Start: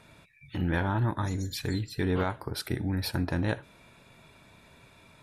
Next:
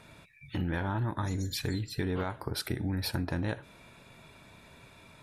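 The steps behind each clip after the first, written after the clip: compression, threshold -30 dBFS, peak gain reduction 7 dB; trim +1.5 dB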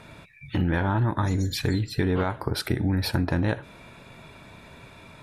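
treble shelf 4.4 kHz -6.5 dB; trim +8 dB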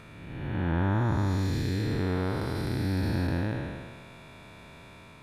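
spectral blur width 510 ms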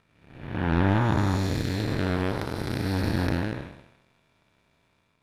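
power-law waveshaper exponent 2; trim +8.5 dB

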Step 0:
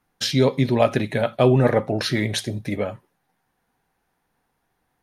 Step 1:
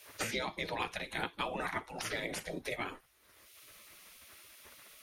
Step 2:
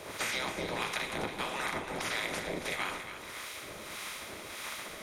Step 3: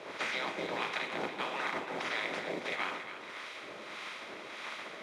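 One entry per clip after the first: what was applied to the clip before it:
spectral gate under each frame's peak -15 dB weak; bass shelf 240 Hz +5.5 dB; three bands compressed up and down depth 100%; trim -6 dB
spectral levelling over time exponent 0.4; harmonic tremolo 1.6 Hz, depth 70%, crossover 830 Hz; two-band feedback delay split 1.5 kHz, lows 139 ms, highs 278 ms, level -10 dB
modulation noise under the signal 10 dB; band-pass 220–3600 Hz

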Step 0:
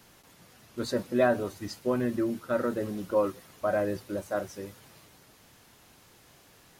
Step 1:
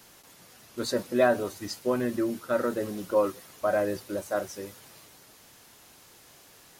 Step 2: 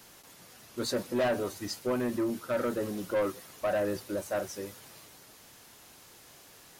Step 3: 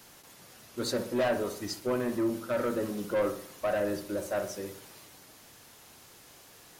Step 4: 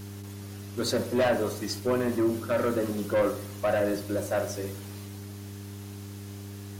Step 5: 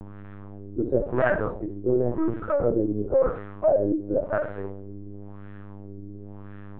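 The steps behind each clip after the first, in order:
tone controls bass -5 dB, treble +4 dB; trim +2 dB
saturation -23.5 dBFS, distortion -10 dB
filtered feedback delay 62 ms, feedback 50%, low-pass 1.6 kHz, level -8 dB
mains buzz 100 Hz, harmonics 4, -44 dBFS -6 dB/octave; trim +3.5 dB
LFO low-pass sine 0.95 Hz 330–1600 Hz; LPC vocoder at 8 kHz pitch kept

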